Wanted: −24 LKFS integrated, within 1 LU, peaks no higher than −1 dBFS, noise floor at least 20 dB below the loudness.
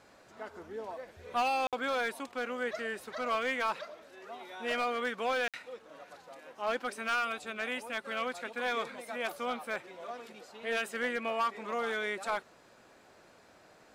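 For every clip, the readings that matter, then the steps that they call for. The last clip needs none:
share of clipped samples 0.9%; peaks flattened at −25.0 dBFS; number of dropouts 2; longest dropout 57 ms; integrated loudness −34.5 LKFS; sample peak −25.0 dBFS; target loudness −24.0 LKFS
→ clipped peaks rebuilt −25 dBFS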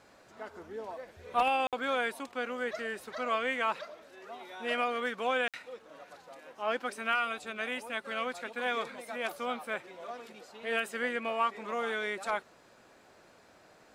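share of clipped samples 0.0%; number of dropouts 2; longest dropout 57 ms
→ repair the gap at 0:01.67/0:05.48, 57 ms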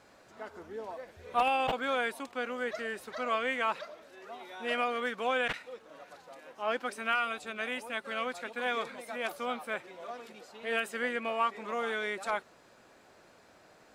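number of dropouts 0; integrated loudness −33.5 LKFS; sample peak −16.0 dBFS; target loudness −24.0 LKFS
→ level +9.5 dB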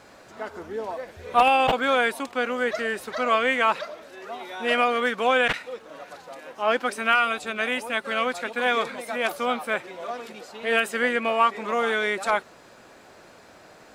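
integrated loudness −24.0 LKFS; sample peak −6.5 dBFS; background noise floor −50 dBFS

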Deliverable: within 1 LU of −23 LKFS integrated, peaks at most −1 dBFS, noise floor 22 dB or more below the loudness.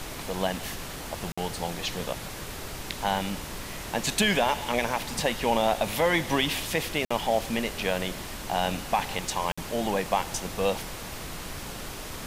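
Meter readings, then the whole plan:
number of dropouts 3; longest dropout 55 ms; background noise floor −38 dBFS; target noise floor −51 dBFS; integrated loudness −29.0 LKFS; sample peak −11.0 dBFS; target loudness −23.0 LKFS
→ repair the gap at 0:01.32/0:07.05/0:09.52, 55 ms
noise reduction from a noise print 13 dB
level +6 dB

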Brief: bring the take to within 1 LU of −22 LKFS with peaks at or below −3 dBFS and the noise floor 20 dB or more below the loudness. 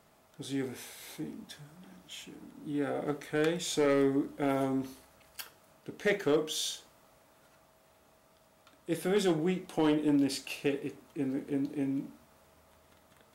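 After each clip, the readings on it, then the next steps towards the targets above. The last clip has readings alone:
share of clipped samples 0.3%; peaks flattened at −20.0 dBFS; integrated loudness −32.0 LKFS; sample peak −20.0 dBFS; target loudness −22.0 LKFS
→ clipped peaks rebuilt −20 dBFS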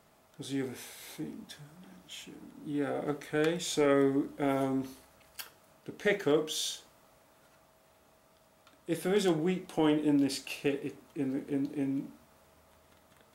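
share of clipped samples 0.0%; integrated loudness −32.0 LKFS; sample peak −14.5 dBFS; target loudness −22.0 LKFS
→ level +10 dB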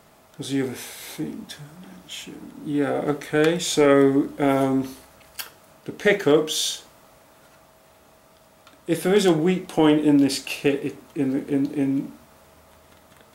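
integrated loudness −22.0 LKFS; sample peak −4.5 dBFS; background noise floor −54 dBFS

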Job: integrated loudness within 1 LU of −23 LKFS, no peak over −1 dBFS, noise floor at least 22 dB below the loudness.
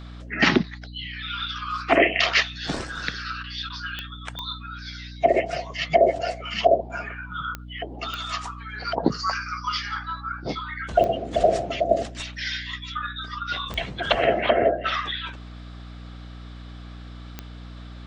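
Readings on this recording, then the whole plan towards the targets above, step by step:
number of clicks 7; mains hum 60 Hz; hum harmonics up to 300 Hz; level of the hum −37 dBFS; integrated loudness −25.0 LKFS; sample peak −5.0 dBFS; target loudness −23.0 LKFS
→ click removal
hum removal 60 Hz, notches 5
level +2 dB

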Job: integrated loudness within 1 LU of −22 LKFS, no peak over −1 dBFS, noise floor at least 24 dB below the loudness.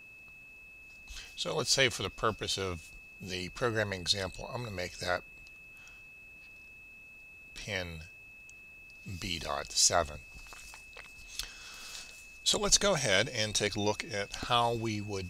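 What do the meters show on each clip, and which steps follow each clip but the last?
interfering tone 2,600 Hz; level of the tone −50 dBFS; integrated loudness −31.0 LKFS; sample peak −9.0 dBFS; target loudness −22.0 LKFS
→ notch filter 2,600 Hz, Q 30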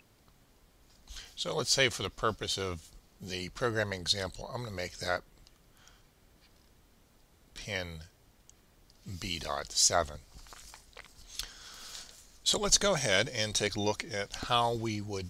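interfering tone none found; integrated loudness −31.0 LKFS; sample peak −9.0 dBFS; target loudness −22.0 LKFS
→ level +9 dB
brickwall limiter −1 dBFS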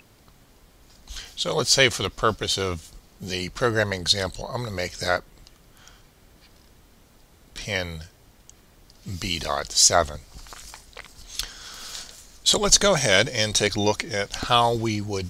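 integrated loudness −22.0 LKFS; sample peak −1.0 dBFS; background noise floor −55 dBFS

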